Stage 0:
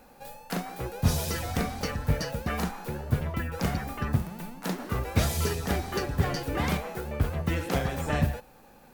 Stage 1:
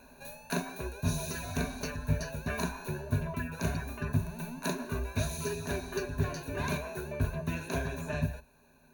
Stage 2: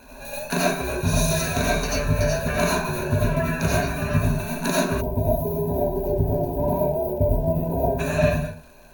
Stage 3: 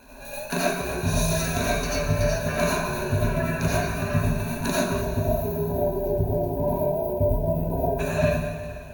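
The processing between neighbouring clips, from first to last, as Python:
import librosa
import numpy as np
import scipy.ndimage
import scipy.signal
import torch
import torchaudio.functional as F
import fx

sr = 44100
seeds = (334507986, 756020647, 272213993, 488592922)

y1 = fx.ripple_eq(x, sr, per_octave=1.5, db=16)
y1 = fx.rider(y1, sr, range_db=10, speed_s=0.5)
y1 = y1 * 10.0 ** (-7.5 / 20.0)
y2 = fx.rev_freeverb(y1, sr, rt60_s=0.41, hf_ratio=0.55, predelay_ms=50, drr_db=-6.0)
y2 = fx.spec_box(y2, sr, start_s=5.01, length_s=2.98, low_hz=1000.0, high_hz=11000.0, gain_db=-29)
y2 = fx.dmg_crackle(y2, sr, seeds[0], per_s=150.0, level_db=-50.0)
y2 = y2 * 10.0 ** (7.0 / 20.0)
y3 = fx.rev_plate(y2, sr, seeds[1], rt60_s=3.1, hf_ratio=0.85, predelay_ms=0, drr_db=6.0)
y3 = y3 * 10.0 ** (-3.0 / 20.0)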